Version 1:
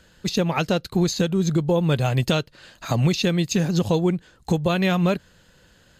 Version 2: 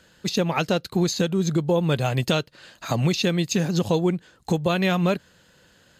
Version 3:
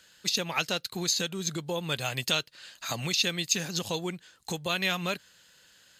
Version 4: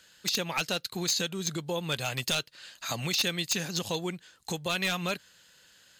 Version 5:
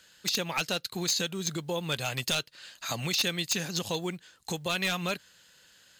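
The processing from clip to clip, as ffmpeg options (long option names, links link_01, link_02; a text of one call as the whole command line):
ffmpeg -i in.wav -af "highpass=frequency=130:poles=1" out.wav
ffmpeg -i in.wav -af "tiltshelf=frequency=1200:gain=-8.5,volume=-5.5dB" out.wav
ffmpeg -i in.wav -af "aeval=exprs='0.106*(abs(mod(val(0)/0.106+3,4)-2)-1)':channel_layout=same" out.wav
ffmpeg -i in.wav -af "acrusher=bits=8:mode=log:mix=0:aa=0.000001" out.wav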